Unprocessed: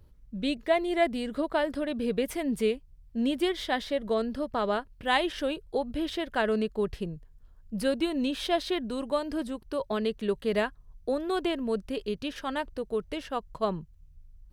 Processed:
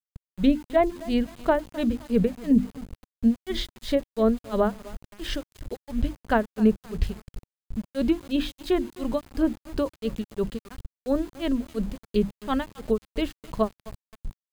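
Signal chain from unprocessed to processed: grains 0.261 s, grains 2.9/s, pitch spread up and down by 0 st; treble ducked by the level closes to 1400 Hz, closed at -26.5 dBFS; bell 120 Hz -9 dB 0.36 oct; notches 50/100/150/200/250/300/350 Hz; feedback echo 0.259 s, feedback 42%, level -19.5 dB; sample gate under -49.5 dBFS; tone controls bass +13 dB, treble +4 dB; notch 5600 Hz, Q 14; gain +6.5 dB

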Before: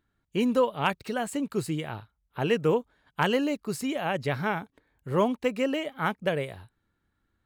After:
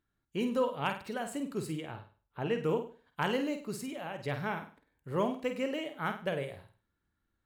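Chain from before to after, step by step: 1.79–2.57 high shelf 5200 Hz -> 3400 Hz -9.5 dB; 3.74–4.23 compressor, threshold -30 dBFS, peak gain reduction 6.5 dB; flutter echo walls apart 8.6 m, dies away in 0.38 s; gain -7 dB

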